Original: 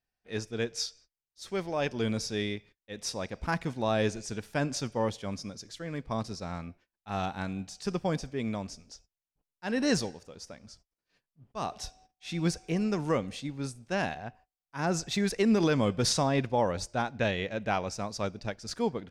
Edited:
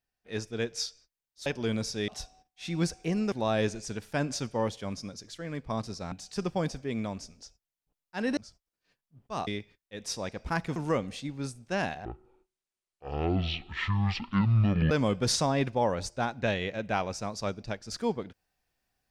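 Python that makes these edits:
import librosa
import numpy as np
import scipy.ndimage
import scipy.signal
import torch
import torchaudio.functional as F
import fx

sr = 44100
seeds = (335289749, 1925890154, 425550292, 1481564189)

y = fx.edit(x, sr, fx.cut(start_s=1.46, length_s=0.36),
    fx.swap(start_s=2.44, length_s=1.29, other_s=11.72, other_length_s=1.24),
    fx.cut(start_s=6.53, length_s=1.08),
    fx.cut(start_s=9.86, length_s=0.76),
    fx.speed_span(start_s=14.25, length_s=1.43, speed=0.5), tone=tone)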